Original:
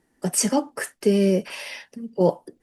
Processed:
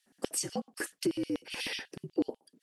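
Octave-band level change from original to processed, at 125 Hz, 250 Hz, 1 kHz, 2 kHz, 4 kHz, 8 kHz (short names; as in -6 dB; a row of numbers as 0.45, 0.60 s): -19.0, -11.0, -15.0, -6.0, -5.0, -11.0 dB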